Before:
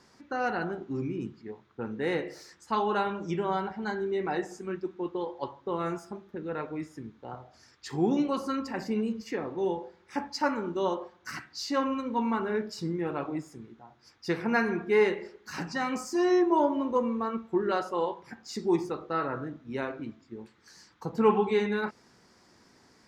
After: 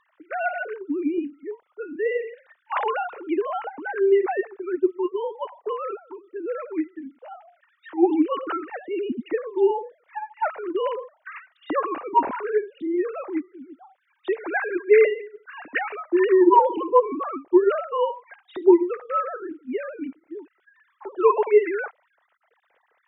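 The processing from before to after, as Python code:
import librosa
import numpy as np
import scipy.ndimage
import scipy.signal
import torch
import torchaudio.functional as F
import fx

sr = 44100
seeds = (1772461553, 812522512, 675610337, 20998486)

y = fx.sine_speech(x, sr)
y = y * 10.0 ** (6.5 / 20.0)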